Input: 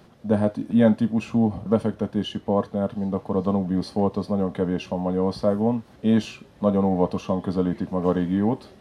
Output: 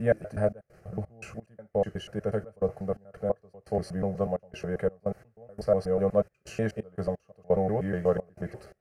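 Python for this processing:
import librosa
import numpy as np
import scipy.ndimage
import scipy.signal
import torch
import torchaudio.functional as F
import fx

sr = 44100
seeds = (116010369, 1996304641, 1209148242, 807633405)

y = fx.block_reorder(x, sr, ms=122.0, group=7)
y = fx.fixed_phaser(y, sr, hz=960.0, stages=6)
y = fx.step_gate(y, sr, bpm=86, pattern='xxx.xx.x..x', floor_db=-24.0, edge_ms=4.5)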